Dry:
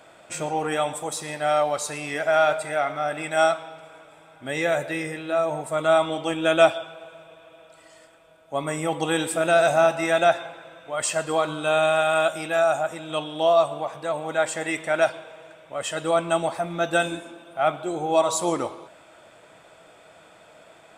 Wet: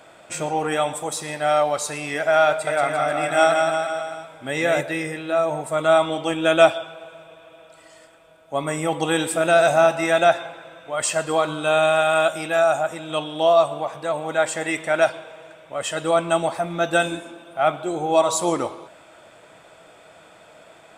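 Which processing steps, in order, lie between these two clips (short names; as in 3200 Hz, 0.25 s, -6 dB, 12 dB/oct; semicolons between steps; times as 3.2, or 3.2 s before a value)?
2.49–4.81 bouncing-ball echo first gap 0.18 s, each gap 0.9×, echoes 5; gain +2.5 dB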